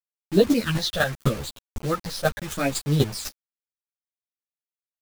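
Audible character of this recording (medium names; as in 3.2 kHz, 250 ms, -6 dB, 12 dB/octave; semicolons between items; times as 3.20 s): phasing stages 8, 0.78 Hz, lowest notch 280–2100 Hz; a quantiser's noise floor 6-bit, dither none; chopped level 4 Hz, depth 60%, duty 10%; a shimmering, thickened sound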